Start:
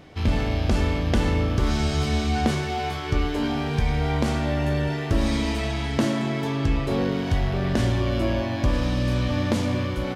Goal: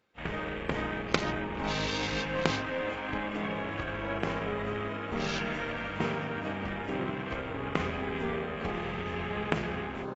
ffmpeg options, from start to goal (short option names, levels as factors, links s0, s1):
-filter_complex "[0:a]highpass=f=700:p=1,asplit=2[s0][s1];[s1]aeval=exprs='sgn(val(0))*max(abs(val(0))-0.00596,0)':c=same,volume=0.398[s2];[s0][s2]amix=inputs=2:normalize=0,asetrate=31183,aresample=44100,atempo=1.41421,asplit=6[s3][s4][s5][s6][s7][s8];[s4]adelay=428,afreqshift=67,volume=0.158[s9];[s5]adelay=856,afreqshift=134,volume=0.0822[s10];[s6]adelay=1284,afreqshift=201,volume=0.0427[s11];[s7]adelay=1712,afreqshift=268,volume=0.0224[s12];[s8]adelay=2140,afreqshift=335,volume=0.0116[s13];[s3][s9][s10][s11][s12][s13]amix=inputs=6:normalize=0,aeval=exprs='0.501*(cos(1*acos(clip(val(0)/0.501,-1,1)))-cos(1*PI/2))+0.0794*(cos(3*acos(clip(val(0)/0.501,-1,1)))-cos(3*PI/2))+0.00316*(cos(6*acos(clip(val(0)/0.501,-1,1)))-cos(6*PI/2))+0.00708*(cos(7*acos(clip(val(0)/0.501,-1,1)))-cos(7*PI/2))+0.00631*(cos(8*acos(clip(val(0)/0.501,-1,1)))-cos(8*PI/2))':c=same,afwtdn=0.00794,aemphasis=mode=production:type=50kf,volume=1.26" -ar 22050 -c:a aac -b:a 24k